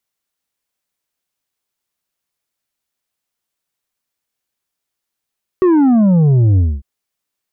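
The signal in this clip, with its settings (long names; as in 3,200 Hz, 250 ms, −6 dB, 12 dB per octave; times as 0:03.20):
bass drop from 380 Hz, over 1.20 s, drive 6 dB, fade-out 0.24 s, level −8.5 dB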